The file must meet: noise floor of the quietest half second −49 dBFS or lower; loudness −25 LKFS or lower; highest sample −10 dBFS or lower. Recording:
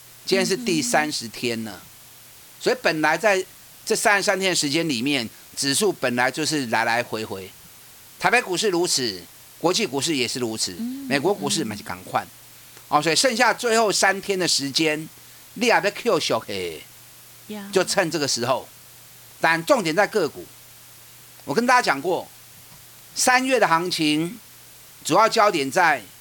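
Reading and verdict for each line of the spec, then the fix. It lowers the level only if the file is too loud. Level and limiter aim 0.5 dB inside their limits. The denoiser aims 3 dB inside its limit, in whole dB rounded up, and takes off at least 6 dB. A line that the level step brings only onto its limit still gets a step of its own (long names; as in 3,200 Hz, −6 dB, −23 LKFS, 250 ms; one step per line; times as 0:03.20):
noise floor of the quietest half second −46 dBFS: out of spec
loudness −21.0 LKFS: out of spec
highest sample −5.0 dBFS: out of spec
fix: level −4.5 dB
brickwall limiter −10.5 dBFS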